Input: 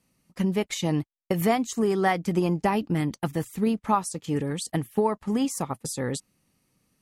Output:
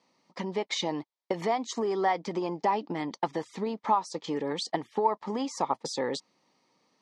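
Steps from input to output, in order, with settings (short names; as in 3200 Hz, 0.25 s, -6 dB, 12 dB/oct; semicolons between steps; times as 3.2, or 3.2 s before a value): compressor 10:1, threshold -27 dBFS, peak gain reduction 11 dB; soft clip -18 dBFS, distortion -26 dB; speaker cabinet 390–5300 Hz, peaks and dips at 930 Hz +7 dB, 1500 Hz -8 dB, 2700 Hz -8 dB; gain +6.5 dB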